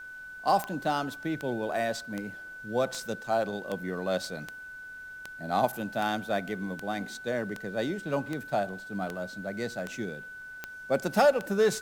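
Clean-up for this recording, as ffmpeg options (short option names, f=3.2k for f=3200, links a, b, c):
-af "adeclick=t=4,bandreject=f=1.5k:w=30,agate=range=-21dB:threshold=-36dB"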